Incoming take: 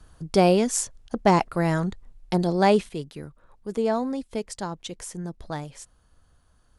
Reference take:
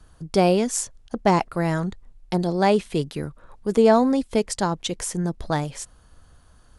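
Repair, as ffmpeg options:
-af "asetnsamples=n=441:p=0,asendcmd='2.89 volume volume 8.5dB',volume=0dB"

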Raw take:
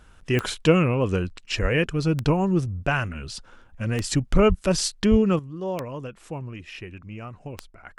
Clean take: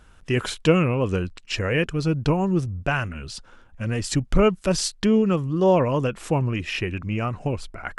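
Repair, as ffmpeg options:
-filter_complex "[0:a]adeclick=t=4,asplit=3[a][b][c];[a]afade=t=out:st=1.61:d=0.02[d];[b]highpass=f=140:w=0.5412,highpass=f=140:w=1.3066,afade=t=in:st=1.61:d=0.02,afade=t=out:st=1.73:d=0.02[e];[c]afade=t=in:st=1.73:d=0.02[f];[d][e][f]amix=inputs=3:normalize=0,asplit=3[g][h][i];[g]afade=t=out:st=4.48:d=0.02[j];[h]highpass=f=140:w=0.5412,highpass=f=140:w=1.3066,afade=t=in:st=4.48:d=0.02,afade=t=out:st=4.6:d=0.02[k];[i]afade=t=in:st=4.6:d=0.02[l];[j][k][l]amix=inputs=3:normalize=0,asplit=3[m][n][o];[m]afade=t=out:st=5.1:d=0.02[p];[n]highpass=f=140:w=0.5412,highpass=f=140:w=1.3066,afade=t=in:st=5.1:d=0.02,afade=t=out:st=5.22:d=0.02[q];[o]afade=t=in:st=5.22:d=0.02[r];[p][q][r]amix=inputs=3:normalize=0,asetnsamples=n=441:p=0,asendcmd='5.39 volume volume 11.5dB',volume=0dB"

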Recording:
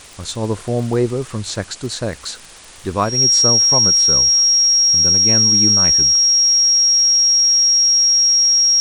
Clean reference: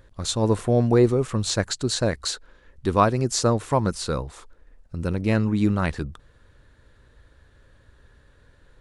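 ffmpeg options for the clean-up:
-af "adeclick=t=4,bandreject=f=5.6k:w=30,afwtdn=0.013"

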